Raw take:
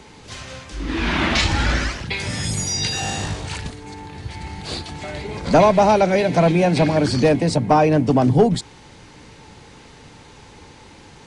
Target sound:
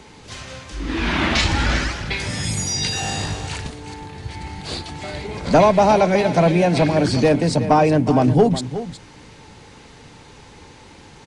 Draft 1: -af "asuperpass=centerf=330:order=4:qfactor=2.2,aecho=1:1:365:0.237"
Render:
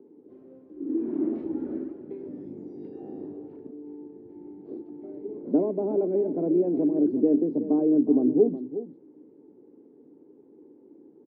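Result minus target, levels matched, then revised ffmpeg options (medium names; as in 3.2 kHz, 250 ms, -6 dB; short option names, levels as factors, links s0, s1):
250 Hz band +3.5 dB
-af "aecho=1:1:365:0.237"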